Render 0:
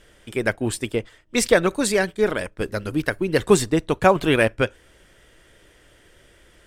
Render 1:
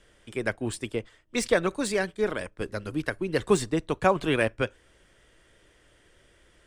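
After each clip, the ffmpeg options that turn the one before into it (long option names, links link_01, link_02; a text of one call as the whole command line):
ffmpeg -i in.wav -filter_complex "[0:a]lowpass=frequency=11000:width=0.5412,lowpass=frequency=11000:width=1.3066,acrossover=split=290|3900[link_01][link_02][link_03];[link_03]asoftclip=type=tanh:threshold=-20dB[link_04];[link_01][link_02][link_04]amix=inputs=3:normalize=0,equalizer=frequency=1100:width=7:gain=2.5,volume=-6.5dB" out.wav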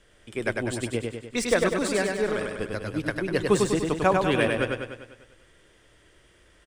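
ffmpeg -i in.wav -af "aecho=1:1:99|198|297|396|495|594|693|792:0.668|0.374|0.21|0.117|0.0657|0.0368|0.0206|0.0115" out.wav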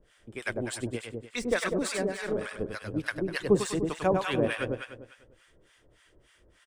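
ffmpeg -i in.wav -filter_complex "[0:a]acrossover=split=830[link_01][link_02];[link_01]aeval=exprs='val(0)*(1-1/2+1/2*cos(2*PI*3.4*n/s))':channel_layout=same[link_03];[link_02]aeval=exprs='val(0)*(1-1/2-1/2*cos(2*PI*3.4*n/s))':channel_layout=same[link_04];[link_03][link_04]amix=inputs=2:normalize=0" out.wav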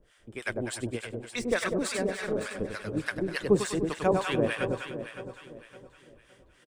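ffmpeg -i in.wav -af "aecho=1:1:562|1124|1686|2248:0.266|0.0905|0.0308|0.0105" out.wav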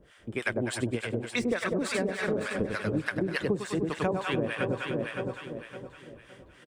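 ffmpeg -i in.wav -af "highpass=frequency=150:poles=1,bass=frequency=250:gain=6,treble=frequency=4000:gain=-6,acompressor=threshold=-32dB:ratio=10,volume=7dB" out.wav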